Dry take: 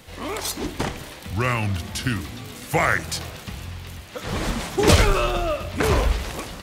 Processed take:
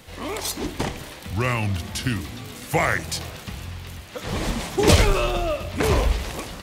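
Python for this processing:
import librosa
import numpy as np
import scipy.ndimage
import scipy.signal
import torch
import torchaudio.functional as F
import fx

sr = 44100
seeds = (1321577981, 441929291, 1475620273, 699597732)

y = fx.dynamic_eq(x, sr, hz=1400.0, q=2.9, threshold_db=-41.0, ratio=4.0, max_db=-5)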